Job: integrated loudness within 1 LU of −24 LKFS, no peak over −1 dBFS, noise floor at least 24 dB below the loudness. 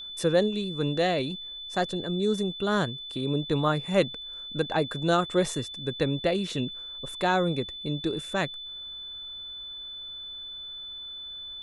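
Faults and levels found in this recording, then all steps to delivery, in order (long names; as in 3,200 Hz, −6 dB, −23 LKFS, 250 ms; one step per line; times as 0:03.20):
interfering tone 3,500 Hz; level of the tone −37 dBFS; integrated loudness −29.0 LKFS; sample peak −10.0 dBFS; target loudness −24.0 LKFS
→ notch filter 3,500 Hz, Q 30
level +5 dB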